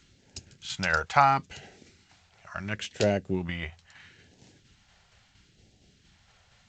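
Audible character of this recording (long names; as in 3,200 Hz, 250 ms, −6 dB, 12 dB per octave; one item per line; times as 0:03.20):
tremolo saw down 4.3 Hz, depth 40%
phaser sweep stages 2, 0.74 Hz, lowest notch 280–1,200 Hz
G.722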